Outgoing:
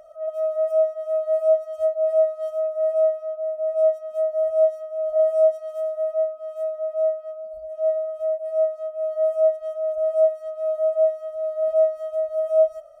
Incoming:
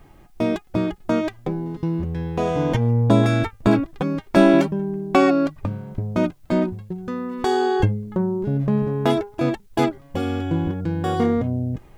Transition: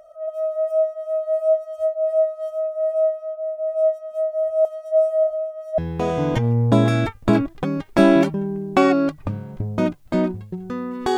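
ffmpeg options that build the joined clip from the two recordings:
-filter_complex "[0:a]apad=whole_dur=11.17,atrim=end=11.17,asplit=2[s0][s1];[s0]atrim=end=4.652[s2];[s1]atrim=start=4.648:end=5.782,asetpts=PTS-STARTPTS,areverse[s3];[1:a]atrim=start=2.158:end=7.55[s4];[s2][s3]acrossfade=d=0.004:c1=hsin:c2=hsin[s5];[s5][s4]acrossfade=d=0.004:c1=hsin:c2=hsin"

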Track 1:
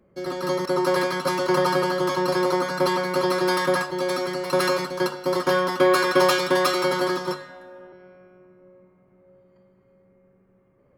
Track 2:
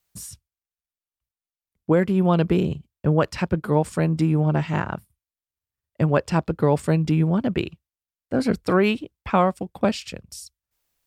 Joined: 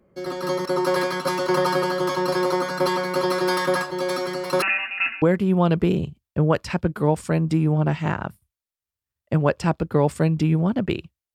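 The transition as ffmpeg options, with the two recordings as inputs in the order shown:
-filter_complex "[0:a]asettb=1/sr,asplit=3[s0][s1][s2];[s0]atrim=end=4.624[s3];[s1]atrim=start=4.62:end=5.22,asetpts=PTS-STARTPTS,afade=t=in:d=0.004:c=qsin,afade=t=out:st=0.596:d=0.004:c=qsin,lowpass=f=2600:t=q:w=0.5098,lowpass=f=2600:t=q:w=0.6013,lowpass=f=2600:t=q:w=0.9,lowpass=f=2600:t=q:w=2.563,afreqshift=-3000[s4];[s2]atrim=start=5.216[s5];[s3][s4]acrossfade=d=0.004:c1=hsin:c2=qsin[s6];[s6][s5]acrossfade=d=0.004:c1=qsin:c2=hsin,apad=whole_dur=11.34,atrim=end=11.34,atrim=end=5.222[s7];[1:a]atrim=start=1.898:end=8.02[s8];[s7][s8]acrossfade=d=0.004:c1=hsin:c2=hsin"

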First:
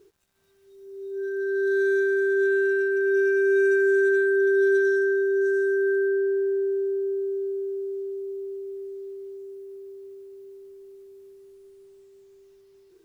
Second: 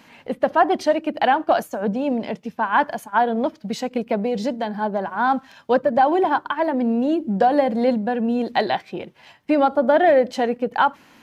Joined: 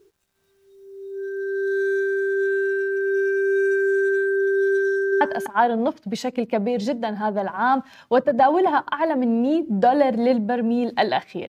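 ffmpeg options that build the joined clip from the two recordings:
-filter_complex "[0:a]apad=whole_dur=11.48,atrim=end=11.48,atrim=end=5.212[s0];[1:a]atrim=start=2.788:end=9.06[s1];[s0][s1]acrossfade=d=0.004:c1=hsin:c2=hsin,asplit=2[s2][s3];[s3]afade=t=in:st=4.87:d=0.01,afade=t=out:st=5.21:d=0.01,aecho=0:1:250|500:0.446684|0.0446684[s4];[s2][s4]amix=inputs=2:normalize=0"

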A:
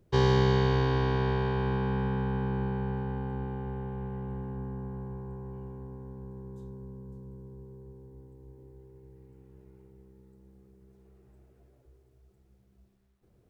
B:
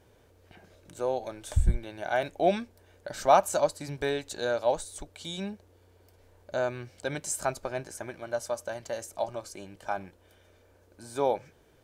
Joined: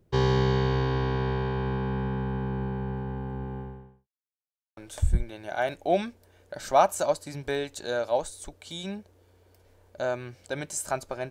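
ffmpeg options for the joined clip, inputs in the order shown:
-filter_complex "[0:a]apad=whole_dur=11.3,atrim=end=11.3,asplit=2[s0][s1];[s0]atrim=end=4.08,asetpts=PTS-STARTPTS,afade=t=out:st=3.59:d=0.49:c=qua[s2];[s1]atrim=start=4.08:end=4.77,asetpts=PTS-STARTPTS,volume=0[s3];[1:a]atrim=start=1.31:end=7.84,asetpts=PTS-STARTPTS,afade=t=in:d=0.004:c=hsin[s4];[s2][s3][s4]concat=n=3:v=0:a=1"

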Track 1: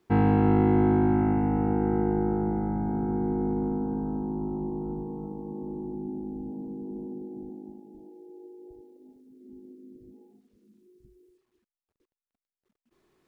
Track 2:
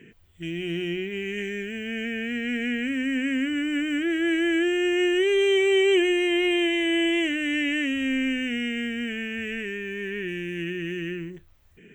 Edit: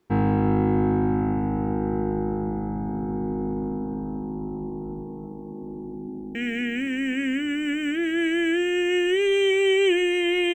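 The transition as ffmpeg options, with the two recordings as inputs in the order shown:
-filter_complex "[0:a]apad=whole_dur=10.54,atrim=end=10.54,atrim=end=6.352[s0];[1:a]atrim=start=2.418:end=6.61[s1];[s0][s1]acrossfade=d=0.004:c1=hsin:c2=hsin,asplit=2[s2][s3];[s3]afade=t=in:st=6.07:d=0.01,afade=t=out:st=6.35:d=0.01,aecho=0:1:260|520|780|1040|1300|1560|1820|2080|2340|2600|2860|3120:0.398107|0.338391|0.287632|0.244488|0.207814|0.176642|0.150146|0.127624|0.10848|0.0922084|0.0783771|0.0666205[s4];[s2][s4]amix=inputs=2:normalize=0"

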